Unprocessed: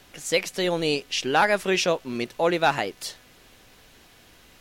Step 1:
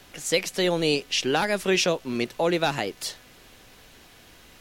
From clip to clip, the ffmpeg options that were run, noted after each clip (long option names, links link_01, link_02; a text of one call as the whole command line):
ffmpeg -i in.wav -filter_complex "[0:a]acrossover=split=410|3000[link_01][link_02][link_03];[link_02]acompressor=threshold=-26dB:ratio=6[link_04];[link_01][link_04][link_03]amix=inputs=3:normalize=0,volume=2dB" out.wav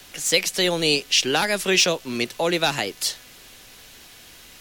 ffmpeg -i in.wav -filter_complex "[0:a]highshelf=frequency=2200:gain=9.5,acrossover=split=280|1900|5900[link_01][link_02][link_03][link_04];[link_02]acrusher=bits=10:mix=0:aa=0.000001[link_05];[link_04]asoftclip=type=hard:threshold=-22.5dB[link_06];[link_01][link_05][link_03][link_06]amix=inputs=4:normalize=0" out.wav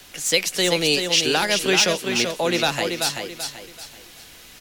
ffmpeg -i in.wav -af "aecho=1:1:384|768|1152|1536:0.531|0.175|0.0578|0.0191" out.wav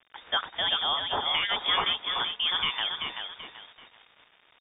ffmpeg -i in.wav -af "aresample=11025,aeval=exprs='val(0)*gte(abs(val(0)),0.00944)':channel_layout=same,aresample=44100,lowpass=frequency=3100:width_type=q:width=0.5098,lowpass=frequency=3100:width_type=q:width=0.6013,lowpass=frequency=3100:width_type=q:width=0.9,lowpass=frequency=3100:width_type=q:width=2.563,afreqshift=-3700,volume=-6dB" out.wav